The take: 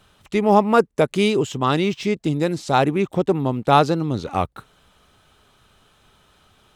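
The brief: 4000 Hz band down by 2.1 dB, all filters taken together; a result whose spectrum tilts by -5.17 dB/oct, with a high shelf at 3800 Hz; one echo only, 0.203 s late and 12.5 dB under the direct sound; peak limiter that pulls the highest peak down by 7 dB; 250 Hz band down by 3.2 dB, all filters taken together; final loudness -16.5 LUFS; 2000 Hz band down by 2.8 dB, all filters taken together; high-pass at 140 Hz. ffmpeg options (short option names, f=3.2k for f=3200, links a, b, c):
-af "highpass=140,equalizer=f=250:t=o:g=-3.5,equalizer=f=2k:t=o:g=-4.5,highshelf=f=3.8k:g=7,equalizer=f=4k:t=o:g=-5,alimiter=limit=-9dB:level=0:latency=1,aecho=1:1:203:0.237,volume=6.5dB"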